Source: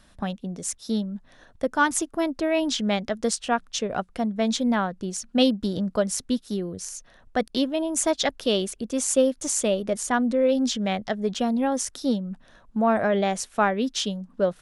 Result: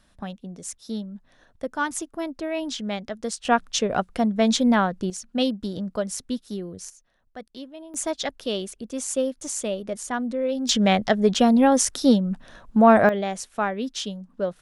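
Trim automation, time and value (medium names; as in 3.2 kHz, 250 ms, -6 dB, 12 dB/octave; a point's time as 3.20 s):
-5 dB
from 3.45 s +4 dB
from 5.10 s -3.5 dB
from 6.90 s -15 dB
from 7.94 s -4.5 dB
from 10.69 s +7 dB
from 13.09 s -3.5 dB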